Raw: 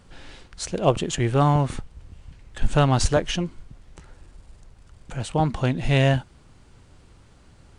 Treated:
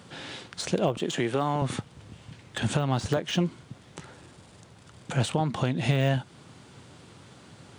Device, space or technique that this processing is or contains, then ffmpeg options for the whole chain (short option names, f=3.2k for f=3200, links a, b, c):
broadcast voice chain: -filter_complex "[0:a]highpass=f=110:w=0.5412,highpass=f=110:w=1.3066,deesser=0.8,acompressor=threshold=-23dB:ratio=4,equalizer=f=3.5k:t=o:w=0.3:g=4,alimiter=limit=-18.5dB:level=0:latency=1:release=397,asettb=1/sr,asplit=3[a][b][c];[a]atrim=end=0.974[d];[b]atrim=start=0.97:end=1.62,asetpts=PTS-STARTPTS,afade=t=in:d=0.004:c=qsin,afade=t=out:st=0.646:d=0.004:c=qsin,highpass=210[e];[c]atrim=start=1.616[f];[d][e]acrossfade=d=0.004:c1=hsin:c2=qsin[g];[g][f]acrossfade=d=0.004:c1=qsin:c2=hsin,volume=6dB"